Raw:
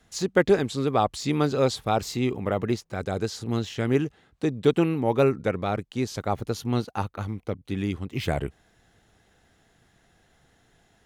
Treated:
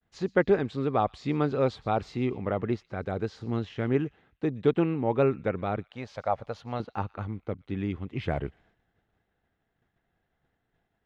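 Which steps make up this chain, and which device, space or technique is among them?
hearing-loss simulation (low-pass filter 2,500 Hz 12 dB per octave; downward expander −54 dBFS)
0:05.86–0:06.80: low shelf with overshoot 460 Hz −7 dB, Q 3
delay with a high-pass on its return 119 ms, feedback 32%, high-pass 2,600 Hz, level −18 dB
level −3 dB

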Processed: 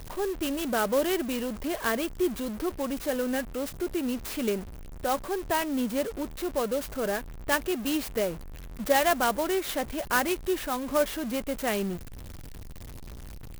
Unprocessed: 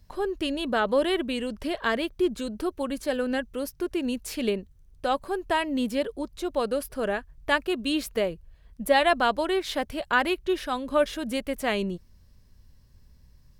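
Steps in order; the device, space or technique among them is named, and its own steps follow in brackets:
early CD player with a faulty converter (converter with a step at zero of −33 dBFS; converter with an unsteady clock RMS 0.048 ms)
level −3 dB

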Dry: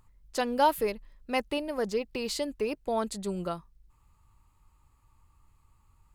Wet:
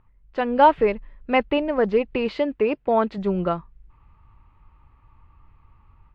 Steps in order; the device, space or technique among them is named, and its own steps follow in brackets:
0:02.28–0:03.18: high-pass filter 130 Hz 6 dB per octave
action camera in a waterproof case (low-pass filter 2,700 Hz 24 dB per octave; automatic gain control gain up to 8 dB; level +2 dB; AAC 64 kbit/s 32,000 Hz)

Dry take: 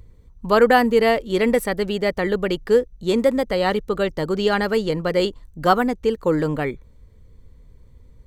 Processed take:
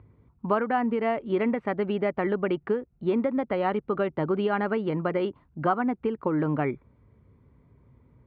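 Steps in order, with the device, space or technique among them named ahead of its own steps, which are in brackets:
bass amplifier (downward compressor 6 to 1, threshold −20 dBFS, peak gain reduction 11 dB; loudspeaker in its box 82–2,200 Hz, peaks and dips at 83 Hz −10 dB, 180 Hz −4 dB, 490 Hz −9 dB, 1,800 Hz −7 dB)
level +1.5 dB

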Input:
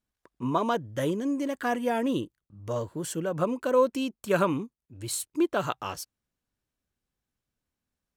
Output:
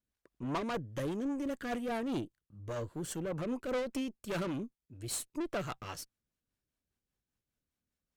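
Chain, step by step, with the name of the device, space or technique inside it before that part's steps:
overdriven rotary cabinet (tube saturation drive 30 dB, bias 0.5; rotating-speaker cabinet horn 5 Hz)

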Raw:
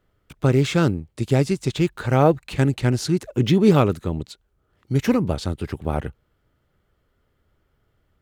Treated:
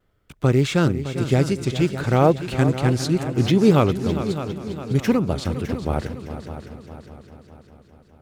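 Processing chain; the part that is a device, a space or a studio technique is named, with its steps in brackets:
multi-head tape echo (echo machine with several playback heads 203 ms, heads second and third, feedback 52%, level −12 dB; tape wow and flutter)

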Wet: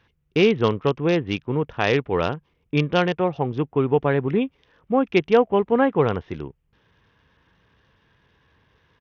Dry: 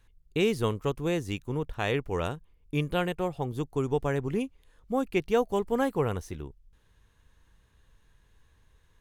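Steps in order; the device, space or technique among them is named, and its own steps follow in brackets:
Bluetooth headset (high-pass filter 120 Hz 12 dB per octave; downsampling to 8,000 Hz; level +8.5 dB; SBC 64 kbit/s 48,000 Hz)

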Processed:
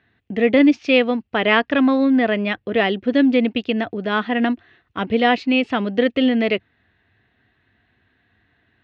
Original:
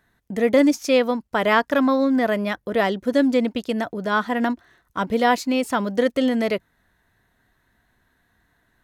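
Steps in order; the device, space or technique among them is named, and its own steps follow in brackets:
guitar cabinet (loudspeaker in its box 87–3,600 Hz, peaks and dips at 93 Hz +6 dB, 170 Hz −6 dB, 570 Hz −6 dB, 970 Hz −9 dB, 1,400 Hz −5 dB, 2,700 Hz +7 dB)
level +4.5 dB

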